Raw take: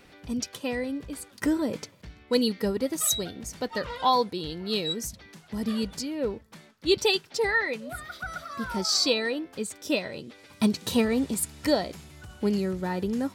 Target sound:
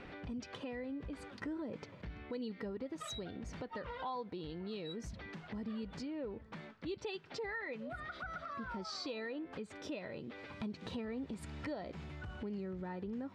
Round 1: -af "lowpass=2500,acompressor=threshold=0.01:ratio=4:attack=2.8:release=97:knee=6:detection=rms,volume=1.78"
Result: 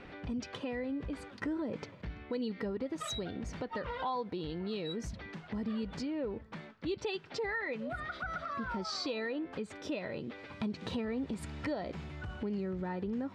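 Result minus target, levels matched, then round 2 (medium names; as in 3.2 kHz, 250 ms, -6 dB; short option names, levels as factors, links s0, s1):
compression: peak gain reduction -5.5 dB
-af "lowpass=2500,acompressor=threshold=0.00422:ratio=4:attack=2.8:release=97:knee=6:detection=rms,volume=1.78"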